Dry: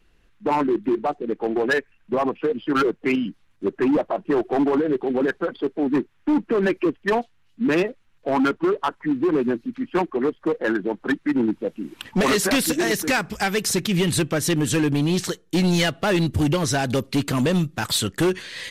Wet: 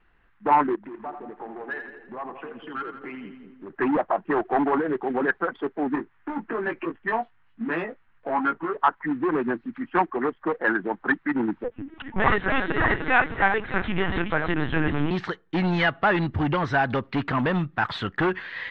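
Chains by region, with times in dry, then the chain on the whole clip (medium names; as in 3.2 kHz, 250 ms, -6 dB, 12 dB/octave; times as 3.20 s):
0.75–3.70 s: compression, threshold -33 dBFS + two-band feedback delay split 560 Hz, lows 194 ms, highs 84 ms, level -7 dB
5.95–8.77 s: treble shelf 5.8 kHz -5.5 dB + compression, threshold -24 dBFS + doubling 18 ms -3.5 dB
11.64–15.11 s: backward echo that repeats 306 ms, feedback 45%, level -5 dB + LPC vocoder at 8 kHz pitch kept
whole clip: low-pass 3.3 kHz 24 dB/octave; high-order bell 1.2 kHz +9 dB; trim -4.5 dB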